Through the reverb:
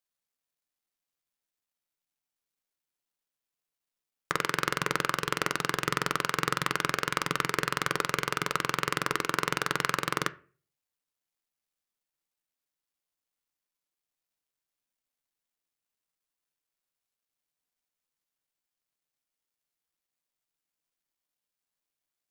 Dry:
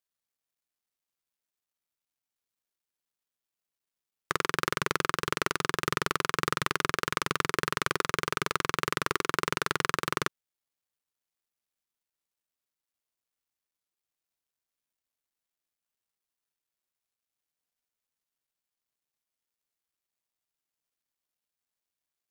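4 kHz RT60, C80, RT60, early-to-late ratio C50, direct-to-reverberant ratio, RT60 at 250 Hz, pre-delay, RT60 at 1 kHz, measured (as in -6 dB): 0.30 s, 25.5 dB, 0.40 s, 20.5 dB, 12.0 dB, 0.50 s, 4 ms, 0.35 s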